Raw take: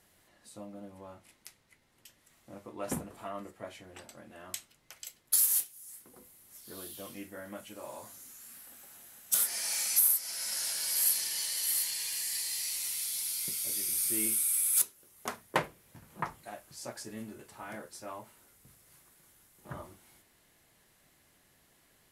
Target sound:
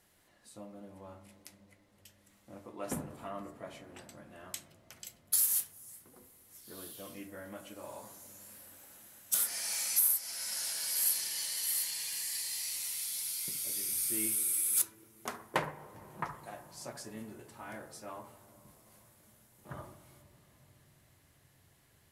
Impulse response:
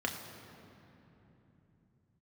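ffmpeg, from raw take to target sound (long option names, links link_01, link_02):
-filter_complex "[0:a]asplit=2[link_01][link_02];[link_02]lowpass=1700[link_03];[1:a]atrim=start_sample=2205,asetrate=25137,aresample=44100,adelay=67[link_04];[link_03][link_04]afir=irnorm=-1:irlink=0,volume=-17.5dB[link_05];[link_01][link_05]amix=inputs=2:normalize=0,volume=-2.5dB"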